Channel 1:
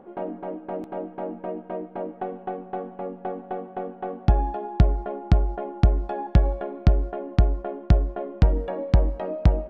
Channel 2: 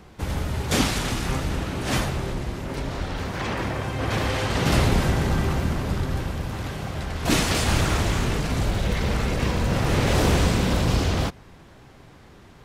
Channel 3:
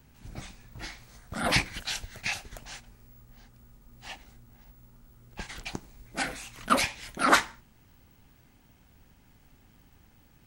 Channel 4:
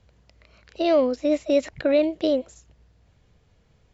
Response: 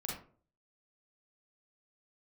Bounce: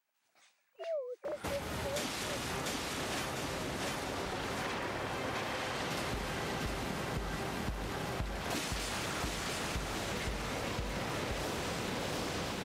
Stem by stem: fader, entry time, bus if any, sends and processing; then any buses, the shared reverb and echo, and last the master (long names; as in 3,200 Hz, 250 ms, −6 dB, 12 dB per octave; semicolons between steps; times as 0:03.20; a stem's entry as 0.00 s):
−10.0 dB, 1.85 s, no send, no echo send, no processing
+0.5 dB, 1.25 s, no send, echo send −3.5 dB, high-pass filter 360 Hz 6 dB per octave
−17.5 dB, 0.00 s, no send, echo send −12 dB, high-pass filter 820 Hz 12 dB per octave
−13.5 dB, 0.00 s, no send, no echo send, three sine waves on the formant tracks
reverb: not used
echo: repeating echo 698 ms, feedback 40%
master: downward compressor 10 to 1, threshold −34 dBFS, peak gain reduction 16 dB